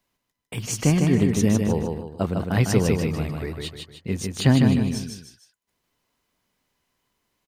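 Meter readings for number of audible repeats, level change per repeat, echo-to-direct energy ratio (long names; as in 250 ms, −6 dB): 3, −8.0 dB, −3.5 dB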